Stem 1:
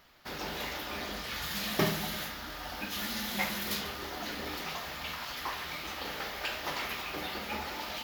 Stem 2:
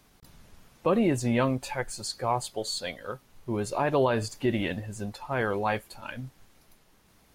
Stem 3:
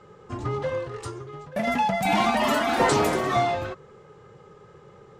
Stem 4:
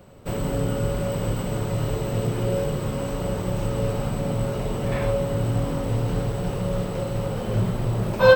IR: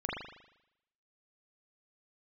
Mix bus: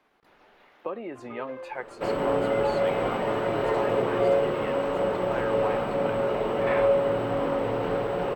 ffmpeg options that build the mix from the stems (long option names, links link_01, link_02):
-filter_complex "[0:a]volume=-18.5dB[link_01];[1:a]acompressor=threshold=-27dB:ratio=10,volume=-0.5dB,asplit=2[link_02][link_03];[2:a]adelay=850,volume=-11dB[link_04];[3:a]acontrast=74,adelay=1750,volume=-1.5dB[link_05];[link_03]apad=whole_len=354560[link_06];[link_01][link_06]sidechaincompress=threshold=-41dB:ratio=8:attack=16:release=1040[link_07];[link_07][link_02][link_04][link_05]amix=inputs=4:normalize=0,acrossover=split=290 2900:gain=0.0891 1 0.0891[link_08][link_09][link_10];[link_08][link_09][link_10]amix=inputs=3:normalize=0"